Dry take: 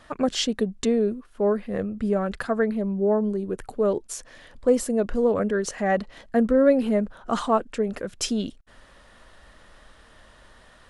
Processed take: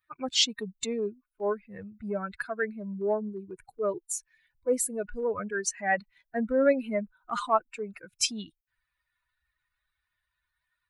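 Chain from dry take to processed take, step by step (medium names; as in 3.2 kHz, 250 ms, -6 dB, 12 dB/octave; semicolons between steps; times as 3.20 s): expander on every frequency bin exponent 2; transient shaper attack -4 dB, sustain 0 dB; tilt shelf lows -7.5 dB, about 650 Hz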